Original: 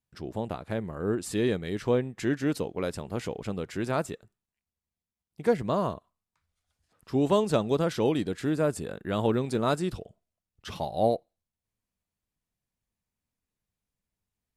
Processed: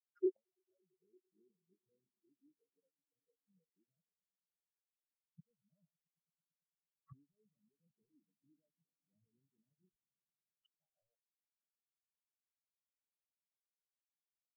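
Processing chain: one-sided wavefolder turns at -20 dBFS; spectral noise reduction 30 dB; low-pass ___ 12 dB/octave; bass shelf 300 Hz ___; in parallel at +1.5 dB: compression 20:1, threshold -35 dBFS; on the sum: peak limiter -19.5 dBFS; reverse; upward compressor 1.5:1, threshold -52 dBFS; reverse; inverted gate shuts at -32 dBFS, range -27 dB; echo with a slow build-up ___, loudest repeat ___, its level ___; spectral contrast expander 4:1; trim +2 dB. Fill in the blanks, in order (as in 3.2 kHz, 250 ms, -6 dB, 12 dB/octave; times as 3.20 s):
3.8 kHz, +5.5 dB, 112 ms, 5, -12.5 dB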